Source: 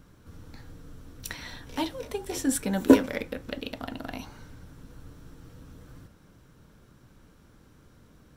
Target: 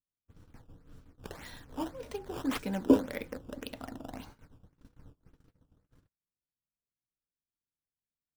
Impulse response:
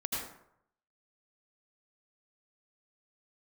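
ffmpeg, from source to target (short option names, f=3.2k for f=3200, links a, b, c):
-filter_complex "[0:a]agate=range=-43dB:threshold=-44dB:ratio=16:detection=peak,acrossover=split=1100[a][b];[b]acrusher=samples=12:mix=1:aa=0.000001:lfo=1:lforange=19.2:lforate=1.8[c];[a][c]amix=inputs=2:normalize=0,volume=-6dB"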